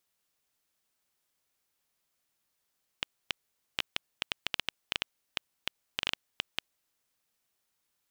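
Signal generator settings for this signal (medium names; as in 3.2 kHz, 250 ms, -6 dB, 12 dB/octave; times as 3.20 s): random clicks 5.7 per s -10.5 dBFS 4.02 s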